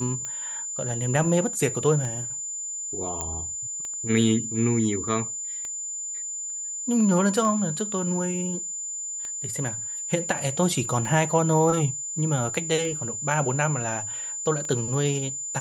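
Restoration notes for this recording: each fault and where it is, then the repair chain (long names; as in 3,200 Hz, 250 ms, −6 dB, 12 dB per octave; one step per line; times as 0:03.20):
scratch tick 33 1/3 rpm −20 dBFS
whistle 7,100 Hz −30 dBFS
0:03.21: click −14 dBFS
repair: click removal
notch filter 7,100 Hz, Q 30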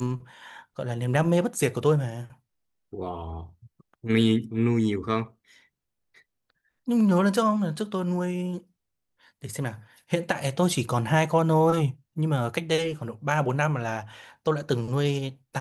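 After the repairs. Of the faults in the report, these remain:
none of them is left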